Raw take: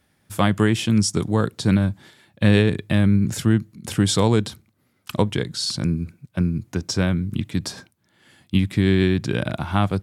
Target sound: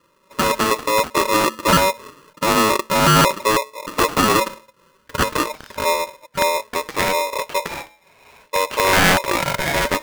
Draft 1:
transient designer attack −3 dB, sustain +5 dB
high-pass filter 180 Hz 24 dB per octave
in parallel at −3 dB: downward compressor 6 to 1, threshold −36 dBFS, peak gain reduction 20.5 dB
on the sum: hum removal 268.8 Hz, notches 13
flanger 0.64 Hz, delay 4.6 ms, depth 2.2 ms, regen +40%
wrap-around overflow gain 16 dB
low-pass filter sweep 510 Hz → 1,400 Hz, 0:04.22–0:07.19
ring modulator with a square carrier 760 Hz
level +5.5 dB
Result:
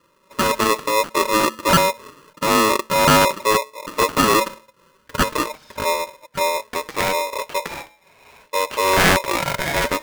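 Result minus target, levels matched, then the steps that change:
downward compressor: peak gain reduction +8.5 dB
change: downward compressor 6 to 1, threshold −26 dBFS, peak gain reduction 12 dB

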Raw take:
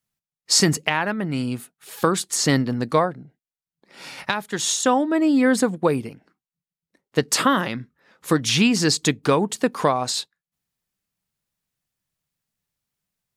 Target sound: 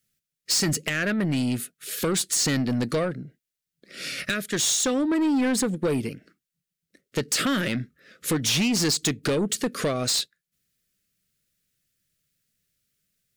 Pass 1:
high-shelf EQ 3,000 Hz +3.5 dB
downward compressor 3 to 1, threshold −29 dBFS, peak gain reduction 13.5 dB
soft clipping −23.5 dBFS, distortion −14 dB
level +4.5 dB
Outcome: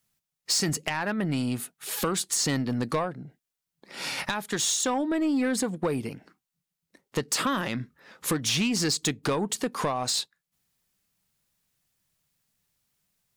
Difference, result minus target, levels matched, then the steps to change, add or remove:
1,000 Hz band +6.0 dB; downward compressor: peak gain reduction +5.5 dB
add first: Butterworth band-reject 900 Hz, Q 1.2
change: downward compressor 3 to 1, threshold −21 dBFS, peak gain reduction 8 dB

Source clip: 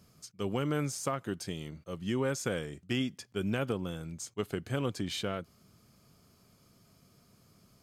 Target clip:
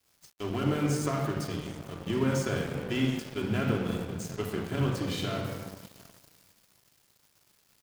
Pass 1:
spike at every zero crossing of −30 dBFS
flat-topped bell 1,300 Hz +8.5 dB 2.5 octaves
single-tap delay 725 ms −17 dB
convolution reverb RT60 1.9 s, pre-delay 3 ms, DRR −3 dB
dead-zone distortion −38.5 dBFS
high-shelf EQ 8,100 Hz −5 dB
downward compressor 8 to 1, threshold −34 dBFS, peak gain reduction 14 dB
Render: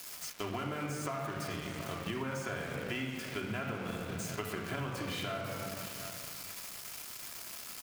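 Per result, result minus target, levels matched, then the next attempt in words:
downward compressor: peak gain reduction +14 dB; spike at every zero crossing: distortion +8 dB; 1,000 Hz band +5.5 dB
spike at every zero crossing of −30 dBFS
flat-topped bell 1,300 Hz +8.5 dB 2.5 octaves
single-tap delay 725 ms −17 dB
convolution reverb RT60 1.9 s, pre-delay 3 ms, DRR −3 dB
dead-zone distortion −38.5 dBFS
high-shelf EQ 8,100 Hz −5 dB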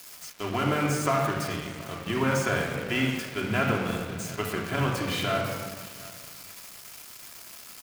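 spike at every zero crossing: distortion +8 dB; 1,000 Hz band +5.5 dB
spike at every zero crossing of −38.5 dBFS
flat-topped bell 1,300 Hz +8.5 dB 2.5 octaves
single-tap delay 725 ms −17 dB
convolution reverb RT60 1.9 s, pre-delay 3 ms, DRR −3 dB
dead-zone distortion −38.5 dBFS
high-shelf EQ 8,100 Hz −5 dB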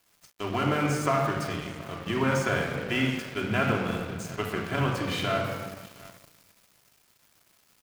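1,000 Hz band +5.5 dB
spike at every zero crossing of −38.5 dBFS
single-tap delay 725 ms −17 dB
convolution reverb RT60 1.9 s, pre-delay 3 ms, DRR −3 dB
dead-zone distortion −38.5 dBFS
high-shelf EQ 8,100 Hz −5 dB

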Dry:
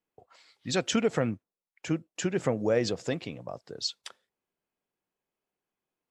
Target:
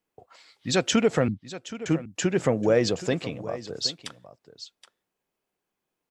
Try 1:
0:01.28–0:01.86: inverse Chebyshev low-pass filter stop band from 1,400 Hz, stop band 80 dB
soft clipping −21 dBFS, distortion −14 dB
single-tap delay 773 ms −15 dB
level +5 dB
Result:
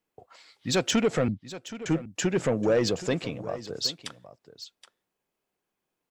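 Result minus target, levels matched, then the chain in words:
soft clipping: distortion +16 dB
0:01.28–0:01.86: inverse Chebyshev low-pass filter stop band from 1,400 Hz, stop band 80 dB
soft clipping −10 dBFS, distortion −30 dB
single-tap delay 773 ms −15 dB
level +5 dB

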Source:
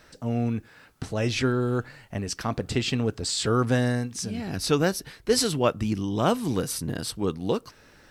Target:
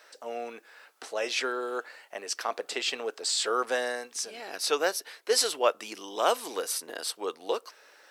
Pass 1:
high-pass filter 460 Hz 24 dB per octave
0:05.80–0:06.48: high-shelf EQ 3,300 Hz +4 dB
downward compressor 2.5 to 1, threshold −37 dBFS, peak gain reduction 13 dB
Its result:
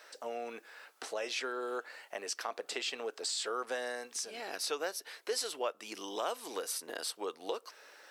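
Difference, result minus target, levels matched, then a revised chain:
downward compressor: peak gain reduction +13 dB
high-pass filter 460 Hz 24 dB per octave
0:05.80–0:06.48: high-shelf EQ 3,300 Hz +4 dB

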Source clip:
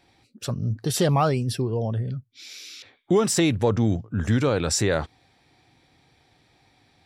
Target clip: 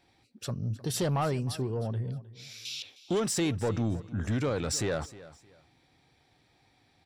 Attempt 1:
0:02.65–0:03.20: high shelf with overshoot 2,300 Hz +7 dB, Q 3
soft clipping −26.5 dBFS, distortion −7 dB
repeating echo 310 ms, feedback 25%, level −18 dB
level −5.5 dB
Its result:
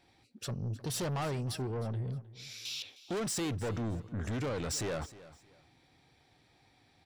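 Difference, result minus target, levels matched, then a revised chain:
soft clipping: distortion +8 dB
0:02.65–0:03.20: high shelf with overshoot 2,300 Hz +7 dB, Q 3
soft clipping −17 dBFS, distortion −15 dB
repeating echo 310 ms, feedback 25%, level −18 dB
level −5.5 dB

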